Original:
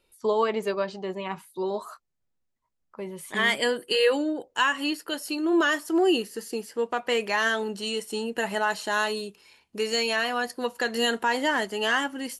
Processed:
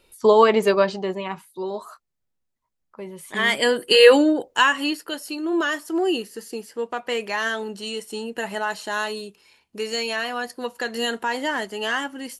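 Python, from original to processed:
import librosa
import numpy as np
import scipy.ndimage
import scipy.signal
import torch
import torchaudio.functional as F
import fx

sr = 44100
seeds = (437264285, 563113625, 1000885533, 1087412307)

y = fx.gain(x, sr, db=fx.line((0.85, 9.5), (1.46, 0.0), (3.26, 0.0), (4.11, 11.0), (5.28, -0.5)))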